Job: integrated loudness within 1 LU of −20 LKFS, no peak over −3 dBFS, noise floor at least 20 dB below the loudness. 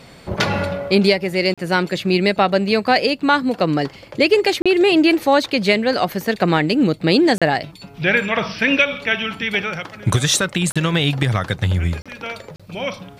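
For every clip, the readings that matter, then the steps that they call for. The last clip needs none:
number of dropouts 6; longest dropout 36 ms; integrated loudness −18.0 LKFS; sample peak −2.0 dBFS; target loudness −20.0 LKFS
→ repair the gap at 0:01.54/0:04.62/0:07.38/0:10.72/0:12.02/0:12.56, 36 ms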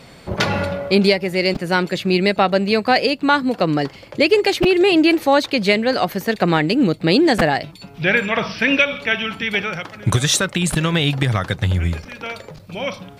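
number of dropouts 0; integrated loudness −18.0 LKFS; sample peak −2.0 dBFS; target loudness −20.0 LKFS
→ level −2 dB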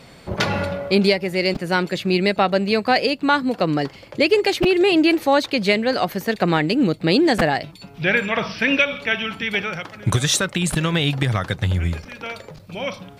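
integrated loudness −20.0 LKFS; sample peak −4.0 dBFS; background noise floor −45 dBFS

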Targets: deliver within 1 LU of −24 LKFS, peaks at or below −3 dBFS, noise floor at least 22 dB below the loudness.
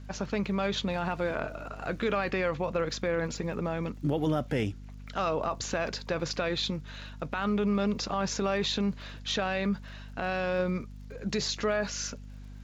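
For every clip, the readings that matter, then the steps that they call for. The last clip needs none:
crackle rate 53 per second; mains hum 50 Hz; hum harmonics up to 250 Hz; level of the hum −41 dBFS; integrated loudness −31.0 LKFS; sample peak −16.5 dBFS; target loudness −24.0 LKFS
→ click removal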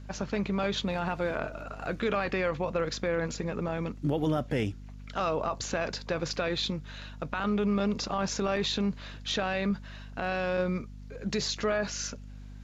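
crackle rate 0.16 per second; mains hum 50 Hz; hum harmonics up to 250 Hz; level of the hum −41 dBFS
→ mains-hum notches 50/100/150/200/250 Hz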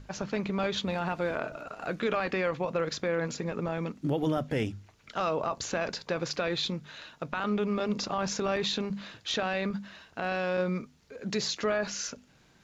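mains hum none found; integrated loudness −31.5 LKFS; sample peak −16.0 dBFS; target loudness −24.0 LKFS
→ level +7.5 dB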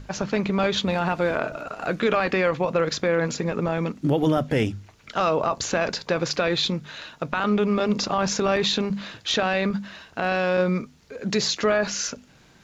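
integrated loudness −24.0 LKFS; sample peak −8.5 dBFS; background noise floor −54 dBFS

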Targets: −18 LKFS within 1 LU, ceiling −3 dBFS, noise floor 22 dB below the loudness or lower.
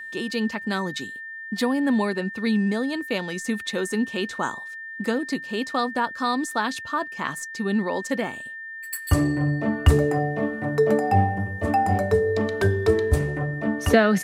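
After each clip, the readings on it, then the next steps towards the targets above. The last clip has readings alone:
interfering tone 1,800 Hz; level of the tone −34 dBFS; integrated loudness −24.5 LKFS; sample peak −4.5 dBFS; target loudness −18.0 LKFS
→ notch filter 1,800 Hz, Q 30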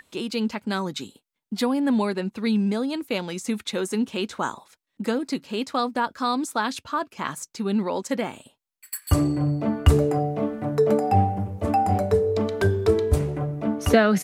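interfering tone none found; integrated loudness −24.5 LKFS; sample peak −5.0 dBFS; target loudness −18.0 LKFS
→ level +6.5 dB
brickwall limiter −3 dBFS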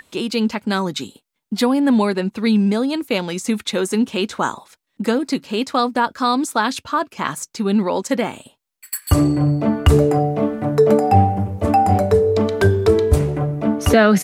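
integrated loudness −18.5 LKFS; sample peak −3.0 dBFS; background noise floor −74 dBFS

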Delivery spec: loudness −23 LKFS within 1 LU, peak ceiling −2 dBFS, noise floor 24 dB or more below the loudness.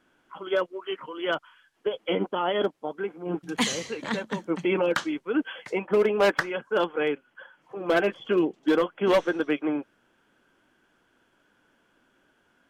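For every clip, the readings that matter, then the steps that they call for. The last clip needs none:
integrated loudness −27.0 LKFS; sample peak −15.0 dBFS; target loudness −23.0 LKFS
→ level +4 dB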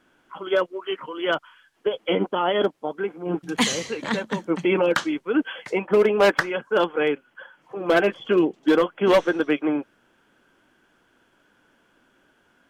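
integrated loudness −23.0 LKFS; sample peak −11.0 dBFS; background noise floor −64 dBFS

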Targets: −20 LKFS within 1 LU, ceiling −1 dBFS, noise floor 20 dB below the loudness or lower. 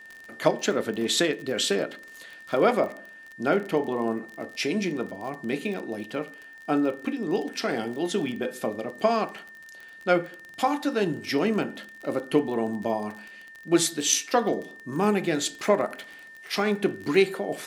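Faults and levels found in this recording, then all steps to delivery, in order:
crackle rate 32 per second; interfering tone 1,800 Hz; level of the tone −44 dBFS; integrated loudness −27.0 LKFS; sample peak −7.0 dBFS; target loudness −20.0 LKFS
→ click removal
notch filter 1,800 Hz, Q 30
level +7 dB
brickwall limiter −1 dBFS

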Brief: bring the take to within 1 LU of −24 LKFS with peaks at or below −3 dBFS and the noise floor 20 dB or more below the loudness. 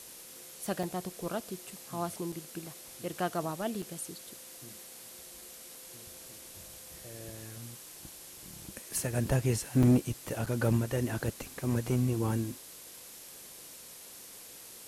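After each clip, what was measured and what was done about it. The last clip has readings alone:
number of dropouts 5; longest dropout 5.2 ms; background noise floor −50 dBFS; target noise floor −54 dBFS; integrated loudness −33.5 LKFS; sample peak −15.0 dBFS; target loudness −24.0 LKFS
→ repair the gap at 0:00.83/0:02.32/0:03.82/0:09.83/0:10.46, 5.2 ms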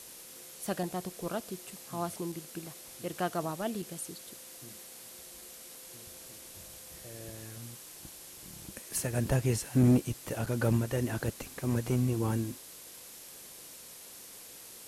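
number of dropouts 0; background noise floor −50 dBFS; target noise floor −54 dBFS
→ broadband denoise 6 dB, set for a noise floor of −50 dBFS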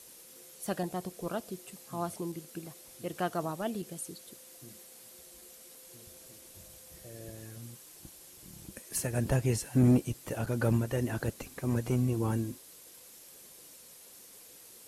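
background noise floor −54 dBFS; integrated loudness −33.0 LKFS; sample peak −15.0 dBFS; target loudness −24.0 LKFS
→ level +9 dB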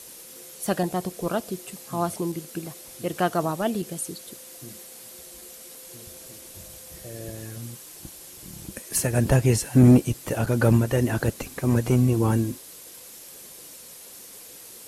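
integrated loudness −24.0 LKFS; sample peak −6.0 dBFS; background noise floor −45 dBFS

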